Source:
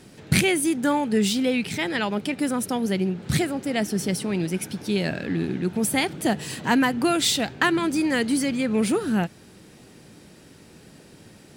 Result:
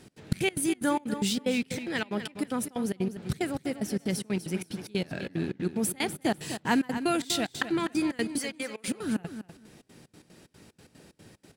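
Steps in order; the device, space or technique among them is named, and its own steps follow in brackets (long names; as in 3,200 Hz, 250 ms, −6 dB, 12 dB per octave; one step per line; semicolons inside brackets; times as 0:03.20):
0:08.38–0:08.88: high-pass filter 560 Hz 12 dB per octave
trance gate with a delay (gate pattern "x.xx.x.x" 185 BPM −24 dB; repeating echo 248 ms, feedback 15%, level −11 dB)
level −4.5 dB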